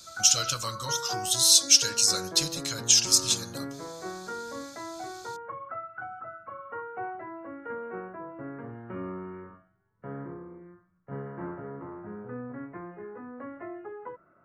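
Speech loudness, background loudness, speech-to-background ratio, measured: -22.0 LUFS, -39.5 LUFS, 17.5 dB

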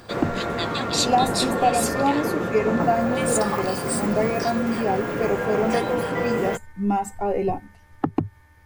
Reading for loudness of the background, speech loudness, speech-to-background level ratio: -25.0 LUFS, -25.5 LUFS, -0.5 dB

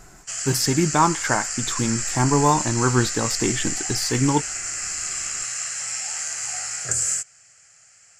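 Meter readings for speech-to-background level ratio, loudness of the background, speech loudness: 3.0 dB, -25.5 LUFS, -22.5 LUFS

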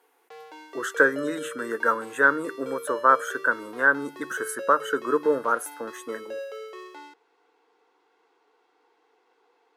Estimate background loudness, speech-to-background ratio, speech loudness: -40.0 LUFS, 15.5 dB, -24.5 LUFS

